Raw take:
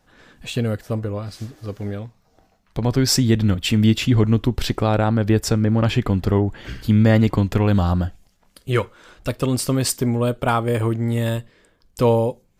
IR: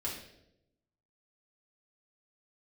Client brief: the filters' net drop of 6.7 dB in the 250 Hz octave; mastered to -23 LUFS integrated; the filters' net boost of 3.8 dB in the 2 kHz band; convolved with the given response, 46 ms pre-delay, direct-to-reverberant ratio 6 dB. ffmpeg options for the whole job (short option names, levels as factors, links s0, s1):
-filter_complex "[0:a]equalizer=f=250:t=o:g=-8.5,equalizer=f=2000:t=o:g=5,asplit=2[s0][s1];[1:a]atrim=start_sample=2205,adelay=46[s2];[s1][s2]afir=irnorm=-1:irlink=0,volume=0.376[s3];[s0][s3]amix=inputs=2:normalize=0,volume=0.75"